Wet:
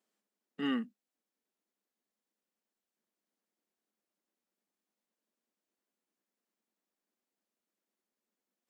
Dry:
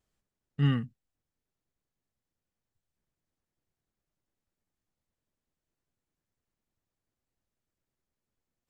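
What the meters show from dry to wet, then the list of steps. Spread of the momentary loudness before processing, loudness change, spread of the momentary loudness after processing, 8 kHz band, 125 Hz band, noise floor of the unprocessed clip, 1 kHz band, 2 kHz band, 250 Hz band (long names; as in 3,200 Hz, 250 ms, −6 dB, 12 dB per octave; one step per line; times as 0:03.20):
18 LU, −6.5 dB, 16 LU, can't be measured, −28.5 dB, below −85 dBFS, −0.5 dB, −1.0 dB, −2.5 dB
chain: elliptic high-pass filter 200 Hz, stop band 40 dB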